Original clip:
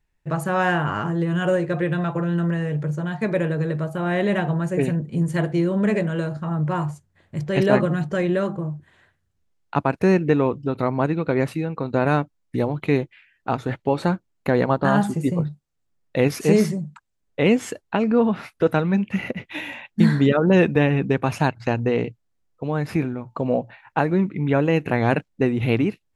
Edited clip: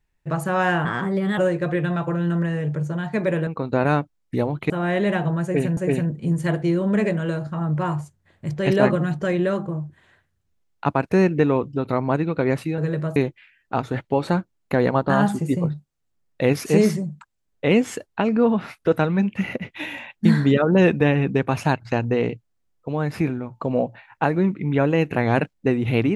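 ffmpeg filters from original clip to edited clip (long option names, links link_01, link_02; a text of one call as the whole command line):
ffmpeg -i in.wav -filter_complex "[0:a]asplit=8[link_01][link_02][link_03][link_04][link_05][link_06][link_07][link_08];[link_01]atrim=end=0.854[link_09];[link_02]atrim=start=0.85:end=1.46,asetpts=PTS-STARTPTS,asetrate=50715,aresample=44100,atrim=end_sample=23392,asetpts=PTS-STARTPTS[link_10];[link_03]atrim=start=1.456:end=3.552[link_11];[link_04]atrim=start=11.678:end=12.912[link_12];[link_05]atrim=start=3.928:end=5.002[link_13];[link_06]atrim=start=4.668:end=11.682[link_14];[link_07]atrim=start=3.548:end=3.932[link_15];[link_08]atrim=start=12.908[link_16];[link_09][link_10]acrossfade=duration=0.004:curve1=hsin:curve2=hsin[link_17];[link_17][link_11]acrossfade=duration=0.004:curve1=hsin:curve2=hsin[link_18];[link_18][link_12]acrossfade=duration=0.004:curve1=hsin:curve2=hsin[link_19];[link_19][link_13]acrossfade=duration=0.004:curve1=hsin:curve2=hsin[link_20];[link_20][link_14]acrossfade=duration=0.004:curve1=hsin:curve2=hsin[link_21];[link_21][link_15]acrossfade=duration=0.004:curve1=hsin:curve2=hsin[link_22];[link_22][link_16]acrossfade=duration=0.004:curve1=hsin:curve2=hsin" out.wav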